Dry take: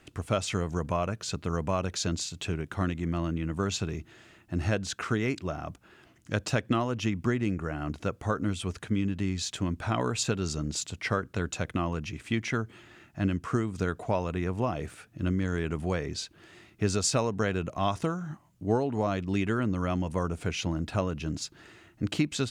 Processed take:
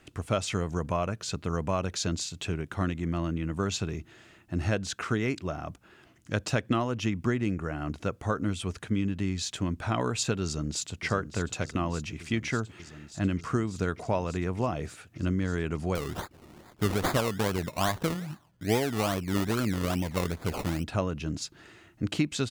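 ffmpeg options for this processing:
-filter_complex "[0:a]asplit=2[a][b];[b]afade=t=in:st=10.43:d=0.01,afade=t=out:st=11.04:d=0.01,aecho=0:1:590|1180|1770|2360|2950|3540|4130|4720|5310|5900|6490|7080:0.281838|0.239563|0.203628|0.173084|0.147121|0.125053|0.106295|0.0903509|0.0767983|0.0652785|0.0554867|0.0471637[c];[a][c]amix=inputs=2:normalize=0,asettb=1/sr,asplit=3[d][e][f];[d]atrim=end=15.954[g];[e]atrim=start=15.95:end=20.84,asetpts=PTS-STARTPTS,afade=t=in:d=0.004:c=qsin,afade=t=out:st=4.886:d=0.004:c=qsin,acrusher=samples=22:mix=1:aa=0.000001:lfo=1:lforange=13.2:lforate=2.4[h];[f]atrim=start=20.836[i];[g][h]acrossfade=d=0.004:c1=hsin:c2=qsin[j];[j][i]acrossfade=d=0.004:c1=qsin:c2=hsin"

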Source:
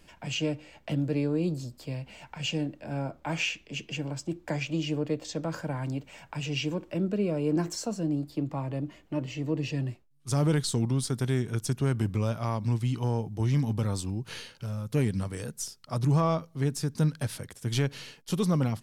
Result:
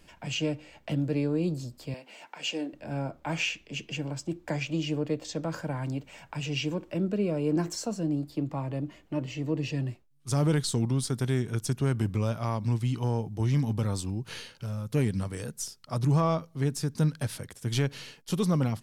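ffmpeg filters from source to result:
-filter_complex "[0:a]asettb=1/sr,asplit=3[a][b][c];[a]atrim=end=1.944[d];[b]atrim=start=1.94:end=2.73,asetpts=PTS-STARTPTS,afade=t=in:d=0.004:c=qsin,afade=t=out:st=0.786:d=0.004:c=qsin,highpass=f=270:w=0.5412,highpass=f=270:w=1.3066[e];[c]atrim=start=2.726[f];[d][e]acrossfade=d=0.004:c1=hsin:c2=qsin[g];[g][f]acrossfade=d=0.004:c1=qsin:c2=hsin"

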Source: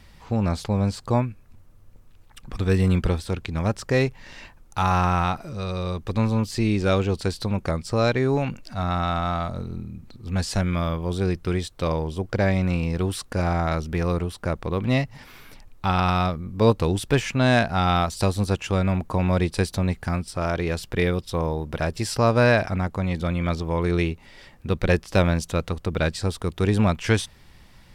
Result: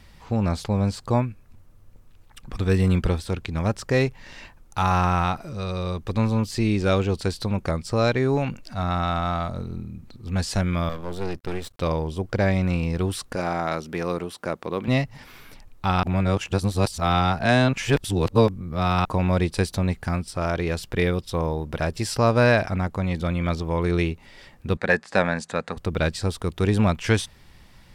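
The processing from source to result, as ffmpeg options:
-filter_complex "[0:a]asettb=1/sr,asplit=3[a][b][c];[a]atrim=end=10.894[d];[b]atrim=start=10.89:end=11.8,asetpts=PTS-STARTPTS,afade=t=in:d=0.004:c=qsin,afade=t=out:st=0.906:d=0.004:c=qsin,aeval=exprs='max(val(0),0)':c=same[e];[c]atrim=start=11.796[f];[d][e]acrossfade=d=0.004:c1=hsin:c2=qsin[g];[g][f]acrossfade=d=0.004:c1=qsin:c2=hsin,asettb=1/sr,asplit=3[h][i][j];[h]atrim=end=13.354[k];[i]atrim=start=13.35:end=14.88,asetpts=PTS-STARTPTS,afade=t=in:d=0.004:c=qsin,afade=t=out:st=1.526:d=0.004:c=qsin,highpass=210[l];[j]atrim=start=14.876[m];[k][l]acrossfade=d=0.004:c1=hsin:c2=qsin[n];[n][m]acrossfade=d=0.004:c1=qsin:c2=hsin,asettb=1/sr,asplit=3[o][p][q];[o]atrim=end=24.774[r];[p]atrim=start=24.77:end=25.77,asetpts=PTS-STARTPTS,afade=t=in:d=0.004:c=qsin,afade=t=out:st=0.996:d=0.004:c=qsin,highpass=210,equalizer=f=230:t=q:w=4:g=3,equalizer=f=330:t=q:w=4:g=-8,equalizer=f=810:t=q:w=4:g=4,equalizer=f=1.7k:t=q:w=4:g=9,equalizer=f=3.1k:t=q:w=4:g=-7,equalizer=f=5.7k:t=q:w=4:g=-7,lowpass=f=8.4k:w=0.5412,lowpass=f=8.4k:w=1.3066[s];[q]atrim=start=25.766[t];[r][s]acrossfade=d=0.004:c1=hsin:c2=qsin[u];[u][t]acrossfade=d=0.004:c1=qsin:c2=hsin,asplit=3[v][w][x];[v]atrim=end=16.032[y];[w]atrim=start=16.028:end=19.052,asetpts=PTS-STARTPTS,areverse[z];[x]atrim=start=19.048[aa];[y][z]acrossfade=d=0.004:c1=hsin:c2=hsin[ab];[ab][aa]acrossfade=d=0.004:c1=hsin:c2=hsin"

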